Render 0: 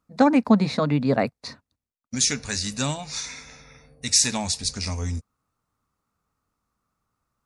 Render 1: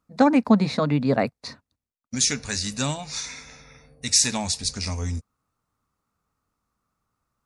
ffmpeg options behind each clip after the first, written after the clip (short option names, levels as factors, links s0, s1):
-af anull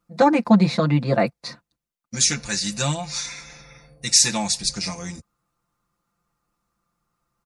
-af "aecho=1:1:5.8:0.97"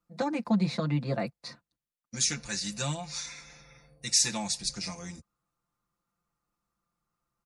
-filter_complex "[0:a]acrossover=split=220|3000[s0][s1][s2];[s1]acompressor=threshold=0.0794:ratio=3[s3];[s0][s3][s2]amix=inputs=3:normalize=0,volume=0.376"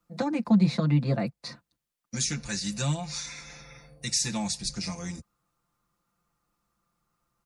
-filter_complex "[0:a]acrossover=split=280[s0][s1];[s1]acompressor=threshold=0.00398:ratio=1.5[s2];[s0][s2]amix=inputs=2:normalize=0,volume=2.11"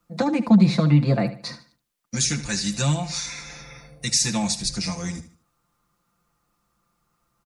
-af "aecho=1:1:75|150|225:0.211|0.0655|0.0203,volume=2"